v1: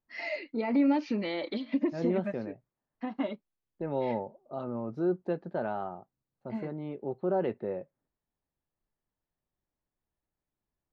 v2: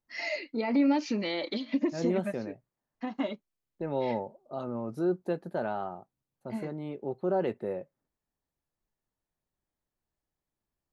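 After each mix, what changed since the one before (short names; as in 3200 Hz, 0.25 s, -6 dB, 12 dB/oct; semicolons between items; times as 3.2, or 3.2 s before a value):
master: remove air absorption 200 m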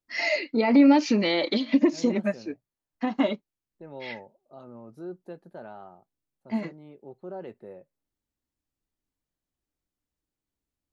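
first voice +8.0 dB; second voice -10.0 dB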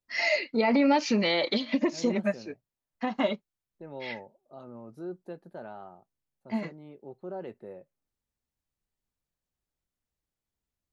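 first voice: add bell 300 Hz -9 dB 0.53 oct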